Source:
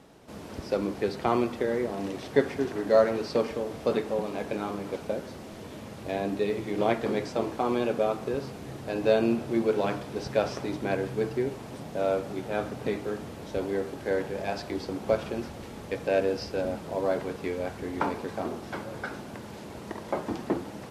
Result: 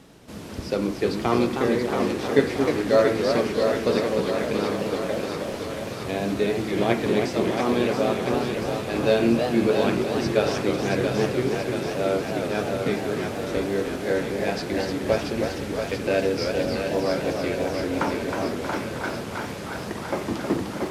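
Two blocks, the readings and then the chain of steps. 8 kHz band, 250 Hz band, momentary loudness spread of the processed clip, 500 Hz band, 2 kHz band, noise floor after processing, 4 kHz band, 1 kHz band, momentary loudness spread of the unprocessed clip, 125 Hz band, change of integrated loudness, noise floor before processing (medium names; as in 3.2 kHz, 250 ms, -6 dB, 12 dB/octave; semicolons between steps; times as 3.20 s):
+10.0 dB, +6.5 dB, 8 LU, +4.5 dB, +7.5 dB, -34 dBFS, +9.5 dB, +4.5 dB, 13 LU, +7.5 dB, +5.0 dB, -42 dBFS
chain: peaking EQ 740 Hz -5.5 dB 1.8 oct; de-hum 74.43 Hz, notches 34; on a send: thinning echo 680 ms, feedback 69%, high-pass 370 Hz, level -5 dB; on the sum: modulated delay 309 ms, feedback 52%, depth 208 cents, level -6 dB; trim +6.5 dB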